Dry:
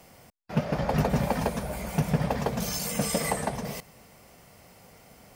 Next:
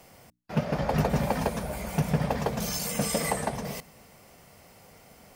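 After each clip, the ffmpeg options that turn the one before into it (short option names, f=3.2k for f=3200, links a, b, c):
-af "bandreject=f=60:t=h:w=6,bandreject=f=120:t=h:w=6,bandreject=f=180:t=h:w=6,bandreject=f=240:t=h:w=6,bandreject=f=300:t=h:w=6"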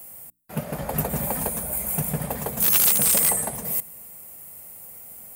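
-af "aexciter=amount=9.2:drive=7:freq=7.9k,aeval=exprs='(mod(2.24*val(0)+1,2)-1)/2.24':c=same,volume=-2.5dB"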